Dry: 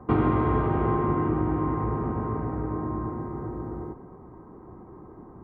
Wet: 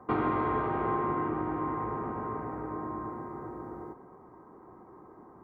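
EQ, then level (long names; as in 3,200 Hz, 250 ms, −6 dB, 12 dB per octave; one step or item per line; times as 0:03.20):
low-shelf EQ 110 Hz −10 dB
low-shelf EQ 420 Hz −9 dB
parametric band 3,000 Hz −3.5 dB 0.45 octaves
0.0 dB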